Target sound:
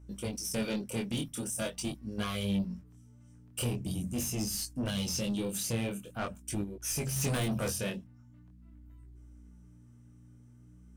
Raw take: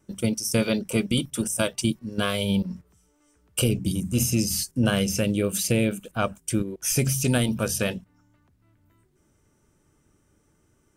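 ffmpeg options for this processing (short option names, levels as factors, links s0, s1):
-filter_complex "[0:a]asettb=1/sr,asplit=3[s0][s1][s2];[s0]atrim=end=4.884[s3];[s1]atrim=start=4.88:end=5.51,asetpts=PTS-STARTPTS,afade=t=in:d=0.004:c=qsin,afade=t=out:st=0.626:d=0.004:c=qsin,equalizer=f=1000:t=o:w=1:g=-11,equalizer=f=2000:t=o:w=1:g=-7,equalizer=f=4000:t=o:w=1:g=12[s4];[s2]atrim=start=5.506[s5];[s3][s4]acrossfade=d=0.004:c1=hsin:c2=qsin[s6];[s6][s5]acrossfade=d=0.004:c1=qsin:c2=hsin,asettb=1/sr,asplit=3[s7][s8][s9];[s7]atrim=end=7.164[s10];[s8]atrim=start=7.16:end=7.7,asetpts=PTS-STARTPTS,afade=t=in:d=0.004:c=qsin,afade=t=out:st=0.536:d=0.004:c=qsin,acontrast=60[s11];[s9]atrim=start=7.696[s12];[s10][s11]acrossfade=d=0.004:c1=hsin:c2=qsin[s13];[s13][s12]acrossfade=d=0.004:c1=qsin:c2=hsin,asoftclip=type=tanh:threshold=0.0891,aeval=exprs='val(0)+0.00562*(sin(2*PI*60*n/s)+sin(2*PI*2*60*n/s)/2+sin(2*PI*3*60*n/s)/3+sin(2*PI*4*60*n/s)/4+sin(2*PI*5*60*n/s)/5)':c=same,flanger=delay=19:depth=7.1:speed=0.44,volume=0.668"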